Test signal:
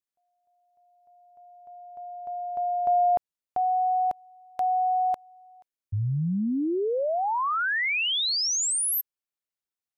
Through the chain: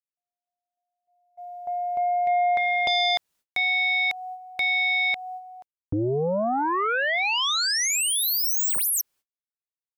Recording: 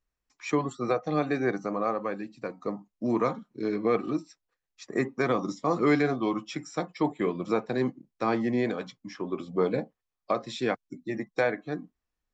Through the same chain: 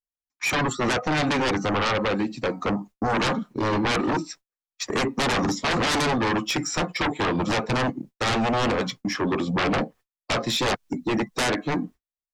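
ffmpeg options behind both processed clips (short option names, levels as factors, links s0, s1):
-filter_complex "[0:a]agate=range=0.0112:threshold=0.00398:ratio=3:release=144:detection=rms,asplit=2[s0][s1];[s1]acompressor=threshold=0.0141:ratio=6:attack=1.3:release=154:detection=rms,volume=0.75[s2];[s0][s2]amix=inputs=2:normalize=0,aeval=exprs='0.251*sin(PI/2*6.31*val(0)/0.251)':c=same,volume=0.422"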